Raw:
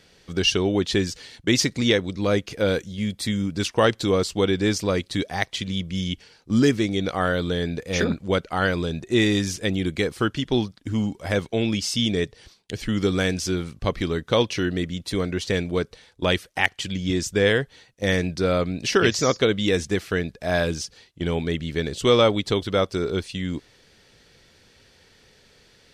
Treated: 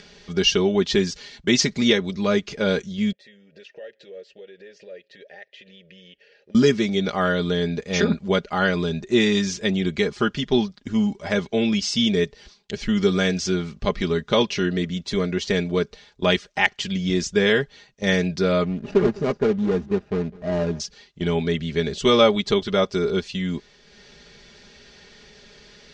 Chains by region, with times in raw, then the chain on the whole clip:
0:03.12–0:06.55: downward compressor 10 to 1, threshold −27 dBFS + formant filter e + parametric band 240 Hz −6 dB 0.54 octaves
0:18.65–0:20.80: running median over 41 samples + high-shelf EQ 3,400 Hz −8.5 dB + single-tap delay 205 ms −22 dB
whole clip: Butterworth low-pass 7,000 Hz 36 dB per octave; comb filter 4.9 ms, depth 71%; upward compression, threshold −41 dBFS

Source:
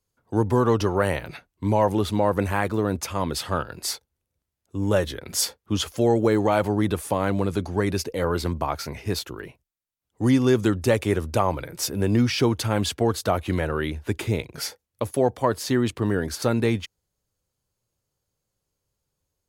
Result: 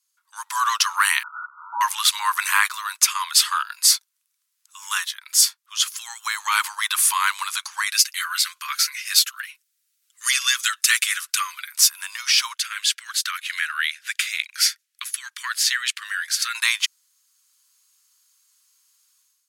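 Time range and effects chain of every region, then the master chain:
0:01.23–0:01.81: spike at every zero crossing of −15.5 dBFS + linear-phase brick-wall low-pass 1,500 Hz + notch comb filter 540 Hz
0:07.88–0:11.72: Butterworth high-pass 1,300 Hz + comb filter 6.8 ms, depth 56%
0:12.53–0:16.55: Butterworth high-pass 1,500 Hz + spectral tilt −3 dB per octave
whole clip: Butterworth high-pass 1,000 Hz 72 dB per octave; parametric band 8,700 Hz +12 dB 3 octaves; automatic gain control; level −1 dB

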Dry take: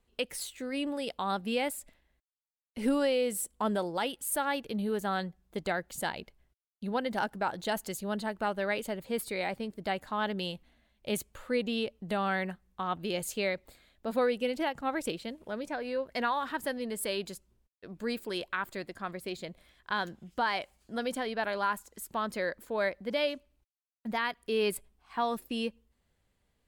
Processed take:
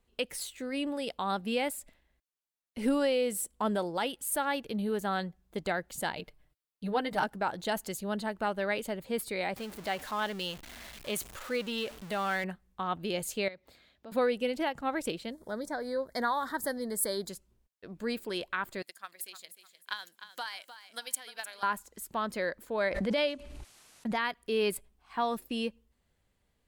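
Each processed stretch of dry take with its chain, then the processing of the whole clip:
0:06.16–0:07.24: parametric band 6,400 Hz −4 dB 0.38 octaves + comb filter 6.6 ms, depth 84%
0:09.56–0:12.44: converter with a step at zero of −39 dBFS + low-shelf EQ 460 Hz −8 dB
0:13.48–0:14.12: high-pass filter 71 Hz + high shelf with overshoot 6,600 Hz −6 dB, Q 1.5 + downward compressor 2 to 1, threshold −54 dBFS
0:15.32–0:17.29: Butterworth band-reject 2,700 Hz, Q 1.6 + high-shelf EQ 6,300 Hz +9 dB
0:18.82–0:21.63: first difference + transient designer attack +11 dB, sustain +2 dB + repeating echo 304 ms, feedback 32%, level −12 dB
0:22.80–0:24.21: low-pass filter 11,000 Hz 24 dB per octave + background raised ahead of every attack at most 24 dB per second
whole clip: no processing

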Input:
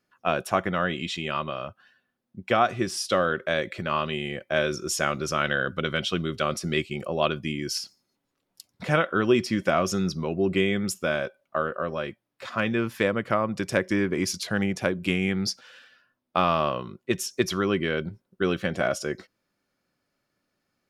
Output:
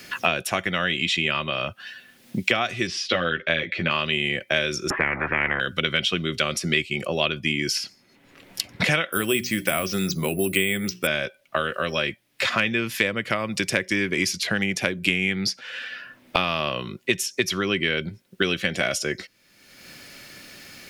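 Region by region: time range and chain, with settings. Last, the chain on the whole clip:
0:02.87–0:03.91: high-frequency loss of the air 230 metres + double-tracking delay 12 ms −3 dB
0:04.90–0:05.60: Butterworth low-pass 1,500 Hz 48 dB per octave + low-shelf EQ 350 Hz +10 dB + every bin compressed towards the loudest bin 10 to 1
0:09.12–0:11.07: mains-hum notches 60/120/180/240/300/360/420 Hz + bad sample-rate conversion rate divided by 4×, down filtered, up hold
whole clip: high shelf with overshoot 1,600 Hz +8 dB, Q 1.5; multiband upward and downward compressor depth 100%; level −1.5 dB

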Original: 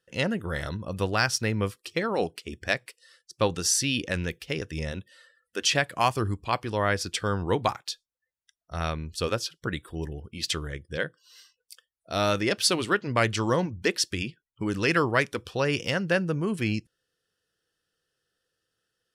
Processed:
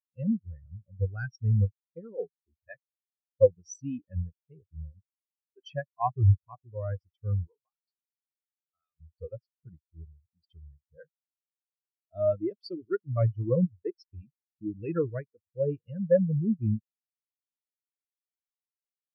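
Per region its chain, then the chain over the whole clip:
0:07.47–0:09.00: spectral tilt +4.5 dB per octave + downward compressor 12 to 1, threshold −28 dBFS
whole clip: low-shelf EQ 110 Hz +6.5 dB; every bin expanded away from the loudest bin 4 to 1

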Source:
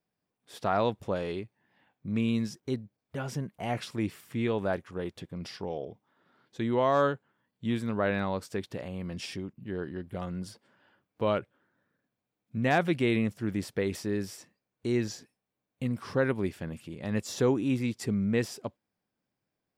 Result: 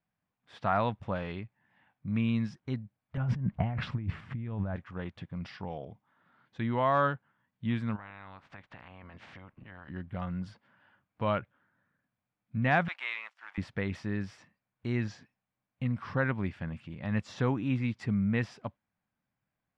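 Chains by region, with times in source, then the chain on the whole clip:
0:03.17–0:04.76: RIAA equalisation playback + compressor whose output falls as the input rises −33 dBFS
0:07.95–0:09.88: ceiling on every frequency bin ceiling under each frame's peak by 23 dB + low-pass filter 1,700 Hz 6 dB per octave + downward compressor 4 to 1, threshold −46 dBFS
0:12.88–0:13.58: mu-law and A-law mismatch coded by A + high-pass filter 800 Hz 24 dB per octave
whole clip: low-pass filter 2,300 Hz 12 dB per octave; parametric band 400 Hz −13.5 dB 1.2 octaves; level +3.5 dB

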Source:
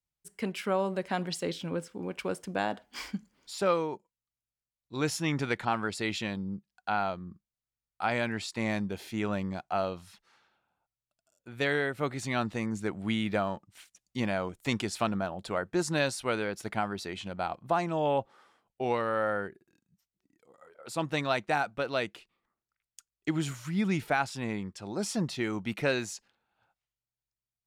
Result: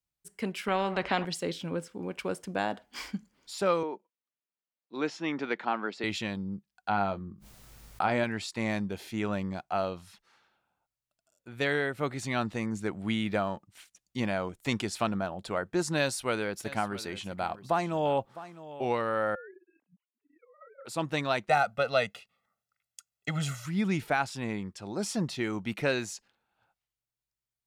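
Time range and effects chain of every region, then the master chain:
0:00.68–0:01.25: low-pass filter 2,400 Hz + parametric band 760 Hz +8 dB 0.36 octaves + every bin compressed towards the loudest bin 2 to 1
0:03.83–0:06.04: high-pass filter 220 Hz 24 dB per octave + high-frequency loss of the air 170 metres
0:06.89–0:08.24: tilt shelving filter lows +3.5 dB, about 1,100 Hz + double-tracking delay 20 ms −10 dB + background raised ahead of every attack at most 45 dB per second
0:15.99–0:18.85: high-shelf EQ 9,100 Hz +7 dB + single-tap delay 658 ms −16 dB
0:19.35–0:20.85: three sine waves on the formant tracks + downward compressor 3 to 1, threshold −45 dBFS
0:21.49–0:23.66: high-pass filter 100 Hz + comb filter 1.5 ms, depth 98%
whole clip: no processing

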